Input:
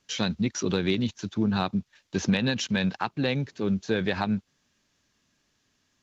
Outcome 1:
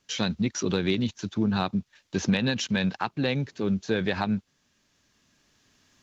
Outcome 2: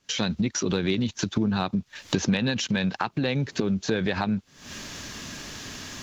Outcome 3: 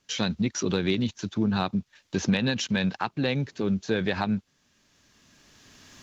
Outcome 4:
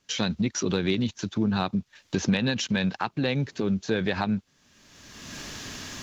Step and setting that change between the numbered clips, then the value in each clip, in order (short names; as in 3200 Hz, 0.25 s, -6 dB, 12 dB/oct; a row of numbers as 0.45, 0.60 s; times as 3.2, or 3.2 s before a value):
recorder AGC, rising by: 5.1, 89, 13, 32 dB/s